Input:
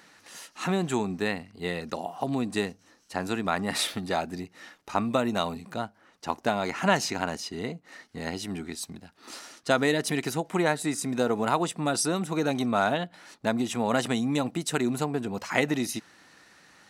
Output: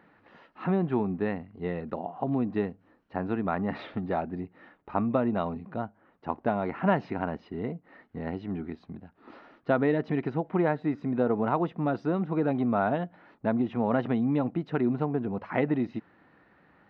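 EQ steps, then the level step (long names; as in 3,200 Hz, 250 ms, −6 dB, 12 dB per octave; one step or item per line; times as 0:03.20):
high-frequency loss of the air 300 metres
head-to-tape spacing loss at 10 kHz 39 dB
+2.5 dB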